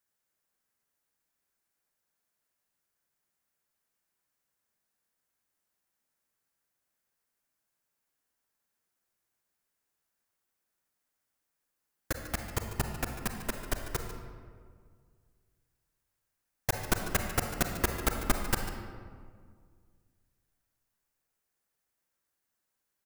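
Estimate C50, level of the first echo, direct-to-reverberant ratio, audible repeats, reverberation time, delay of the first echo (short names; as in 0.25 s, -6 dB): 5.0 dB, -13.5 dB, 4.0 dB, 1, 1.9 s, 0.146 s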